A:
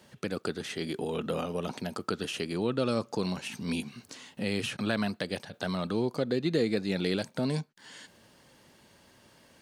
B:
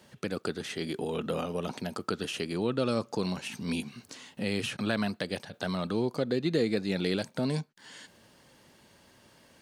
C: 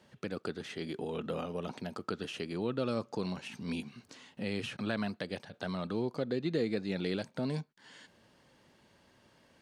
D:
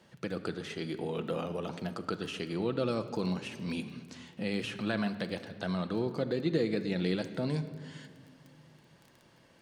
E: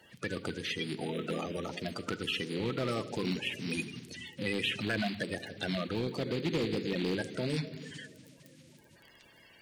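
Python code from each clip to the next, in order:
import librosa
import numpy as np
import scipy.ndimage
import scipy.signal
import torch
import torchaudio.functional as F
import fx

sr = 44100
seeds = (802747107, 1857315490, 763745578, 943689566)

y1 = x
y2 = fx.high_shelf(y1, sr, hz=7400.0, db=-12.0)
y2 = F.gain(torch.from_numpy(y2), -4.5).numpy()
y3 = fx.dmg_crackle(y2, sr, seeds[0], per_s=13.0, level_db=-45.0)
y3 = fx.room_shoebox(y3, sr, seeds[1], volume_m3=2700.0, walls='mixed', distance_m=0.73)
y3 = F.gain(torch.from_numpy(y3), 1.5).numpy()
y4 = fx.spec_quant(y3, sr, step_db=30)
y4 = np.clip(10.0 ** (26.0 / 20.0) * y4, -1.0, 1.0) / 10.0 ** (26.0 / 20.0)
y4 = fx.high_shelf_res(y4, sr, hz=1600.0, db=7.0, q=1.5)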